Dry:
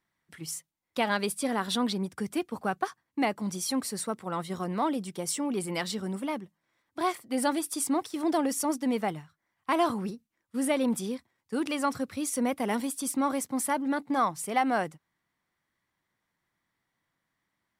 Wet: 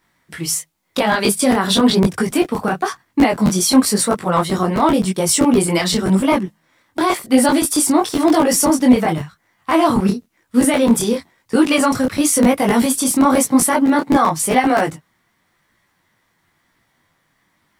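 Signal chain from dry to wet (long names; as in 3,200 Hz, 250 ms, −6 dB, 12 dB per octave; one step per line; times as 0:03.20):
regular buffer underruns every 0.13 s, samples 512, repeat, from 0:00.72
boost into a limiter +22 dB
micro pitch shift up and down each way 33 cents
level −1 dB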